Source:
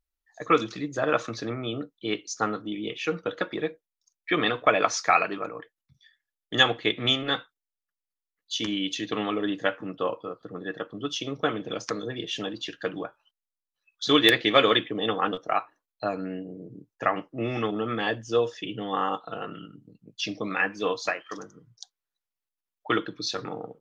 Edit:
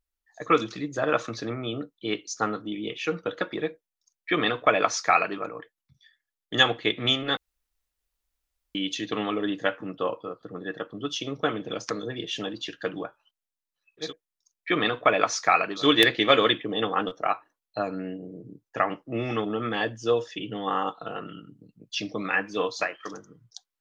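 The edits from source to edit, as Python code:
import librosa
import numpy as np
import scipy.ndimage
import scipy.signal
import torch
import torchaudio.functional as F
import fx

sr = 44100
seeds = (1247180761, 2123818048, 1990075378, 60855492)

y = fx.edit(x, sr, fx.duplicate(start_s=3.66, length_s=1.74, to_s=14.05, crossfade_s=0.16),
    fx.room_tone_fill(start_s=7.37, length_s=1.38), tone=tone)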